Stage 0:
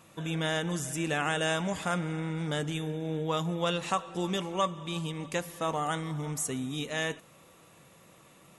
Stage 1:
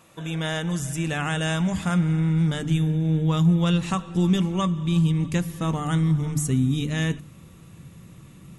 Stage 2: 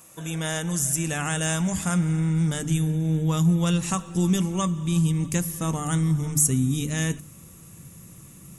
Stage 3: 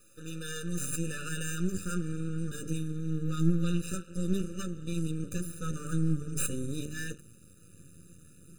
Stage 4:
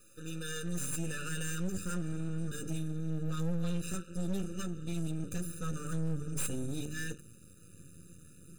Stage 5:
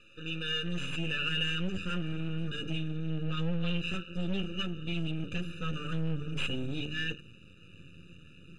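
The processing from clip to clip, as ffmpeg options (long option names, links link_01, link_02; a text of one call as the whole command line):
ffmpeg -i in.wav -af "bandreject=frequency=50:width_type=h:width=6,bandreject=frequency=100:width_type=h:width=6,bandreject=frequency=150:width_type=h:width=6,bandreject=frequency=200:width_type=h:width=6,bandreject=frequency=250:width_type=h:width=6,bandreject=frequency=300:width_type=h:width=6,asubboost=boost=11.5:cutoff=180,volume=2.5dB" out.wav
ffmpeg -i in.wav -af "aexciter=amount=3.1:drive=7.8:freq=5500,volume=-1.5dB" out.wav
ffmpeg -i in.wav -af "flanger=delay=9.1:depth=3:regen=43:speed=0.42:shape=sinusoidal,aeval=exprs='max(val(0),0)':channel_layout=same,afftfilt=real='re*eq(mod(floor(b*sr/1024/590),2),0)':imag='im*eq(mod(floor(b*sr/1024/590),2),0)':win_size=1024:overlap=0.75" out.wav
ffmpeg -i in.wav -af "asoftclip=type=tanh:threshold=-26dB" out.wav
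ffmpeg -i in.wav -af "lowpass=frequency=2900:width_type=q:width=6.9,volume=1.5dB" out.wav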